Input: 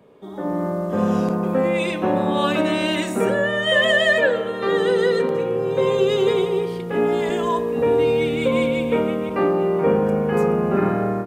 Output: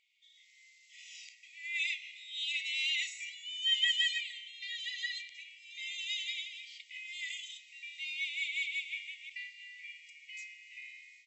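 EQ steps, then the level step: brick-wall FIR band-pass 1900–7900 Hz; -4.5 dB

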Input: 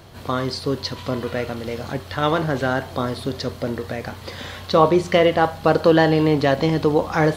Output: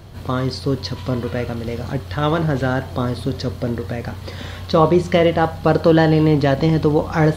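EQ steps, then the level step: low shelf 220 Hz +10 dB; -1.0 dB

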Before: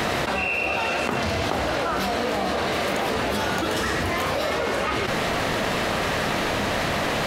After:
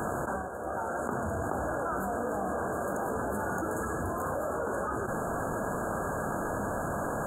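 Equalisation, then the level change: brick-wall FIR band-stop 1700–6500 Hz; -7.0 dB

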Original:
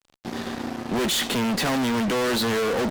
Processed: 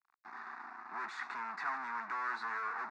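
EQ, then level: ladder band-pass 1400 Hz, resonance 25%; air absorption 79 m; fixed phaser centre 1300 Hz, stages 4; +4.5 dB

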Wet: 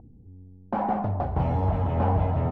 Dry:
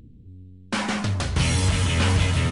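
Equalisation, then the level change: synth low-pass 770 Hz, resonance Q 4.9; -3.5 dB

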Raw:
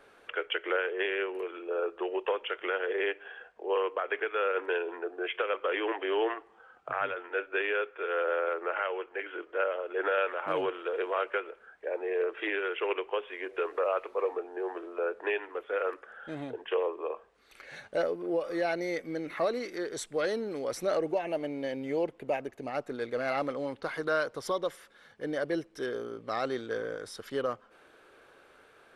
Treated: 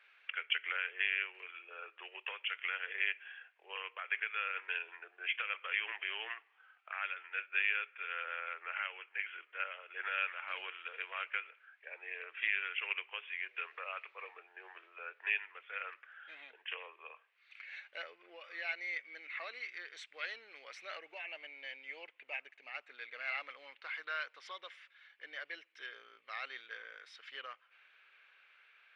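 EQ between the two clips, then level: resonant high-pass 2400 Hz, resonance Q 2.9; tape spacing loss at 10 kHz 34 dB; +3.0 dB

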